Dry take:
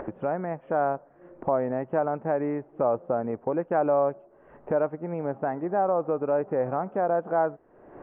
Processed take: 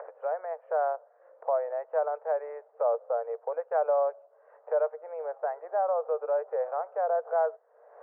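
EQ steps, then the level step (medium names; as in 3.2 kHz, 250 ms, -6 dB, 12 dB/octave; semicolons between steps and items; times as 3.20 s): rippled Chebyshev high-pass 450 Hz, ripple 3 dB; low-pass 1.4 kHz 12 dB/octave; distance through air 160 m; 0.0 dB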